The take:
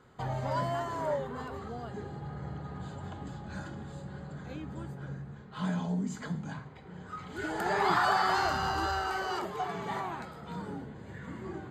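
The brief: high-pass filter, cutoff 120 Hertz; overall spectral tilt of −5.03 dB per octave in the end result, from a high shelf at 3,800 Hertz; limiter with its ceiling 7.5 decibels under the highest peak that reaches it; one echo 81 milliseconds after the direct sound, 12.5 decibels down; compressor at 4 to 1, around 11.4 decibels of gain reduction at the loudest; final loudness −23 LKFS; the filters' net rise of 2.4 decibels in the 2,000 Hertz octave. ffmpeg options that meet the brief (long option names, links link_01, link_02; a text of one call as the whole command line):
ffmpeg -i in.wav -af "highpass=120,equalizer=frequency=2000:width_type=o:gain=4,highshelf=frequency=3800:gain=-3,acompressor=threshold=-36dB:ratio=4,alimiter=level_in=8.5dB:limit=-24dB:level=0:latency=1,volume=-8.5dB,aecho=1:1:81:0.237,volume=19dB" out.wav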